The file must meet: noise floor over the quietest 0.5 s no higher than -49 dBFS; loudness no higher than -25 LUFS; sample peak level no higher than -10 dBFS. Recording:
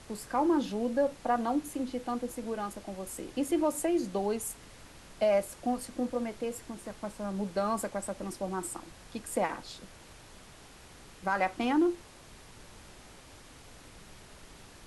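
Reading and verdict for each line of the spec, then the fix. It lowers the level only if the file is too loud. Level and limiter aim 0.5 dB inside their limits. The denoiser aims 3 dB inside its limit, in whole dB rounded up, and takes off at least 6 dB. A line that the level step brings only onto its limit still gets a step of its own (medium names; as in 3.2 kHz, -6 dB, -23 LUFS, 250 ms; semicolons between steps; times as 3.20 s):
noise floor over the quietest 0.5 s -52 dBFS: pass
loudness -32.5 LUFS: pass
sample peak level -16.5 dBFS: pass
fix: none needed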